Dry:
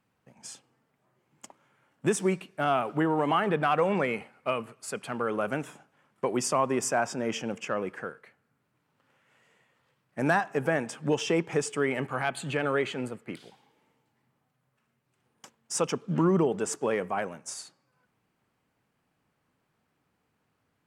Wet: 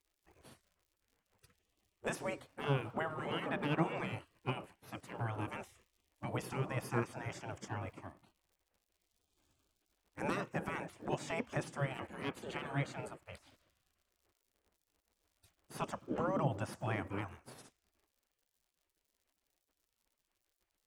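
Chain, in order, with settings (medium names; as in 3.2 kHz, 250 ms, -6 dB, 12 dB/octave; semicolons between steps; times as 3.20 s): crackle 100 per s -52 dBFS; spectral gate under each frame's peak -15 dB weak; tilt shelf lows +9 dB, about 650 Hz; trim +2 dB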